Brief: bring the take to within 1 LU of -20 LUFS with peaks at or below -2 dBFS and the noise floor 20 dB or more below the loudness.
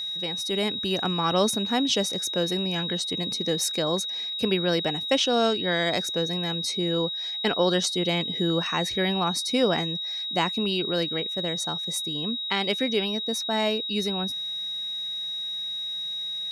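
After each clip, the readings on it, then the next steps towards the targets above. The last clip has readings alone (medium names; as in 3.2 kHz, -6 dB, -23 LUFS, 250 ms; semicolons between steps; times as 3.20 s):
tick rate 19 per s; steady tone 3.8 kHz; tone level -29 dBFS; loudness -25.5 LUFS; peak level -10.0 dBFS; loudness target -20.0 LUFS
-> de-click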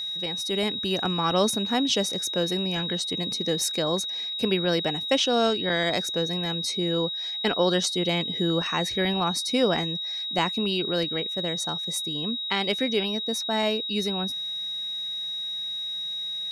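tick rate 0 per s; steady tone 3.8 kHz; tone level -29 dBFS
-> band-stop 3.8 kHz, Q 30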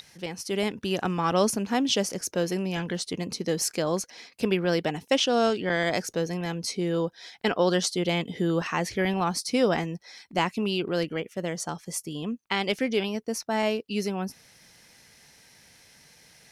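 steady tone not found; loudness -27.5 LUFS; peak level -11.0 dBFS; loudness target -20.0 LUFS
-> trim +7.5 dB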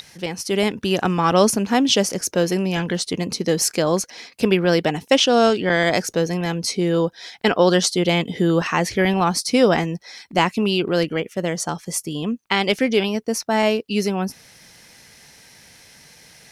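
loudness -20.0 LUFS; peak level -3.5 dBFS; noise floor -49 dBFS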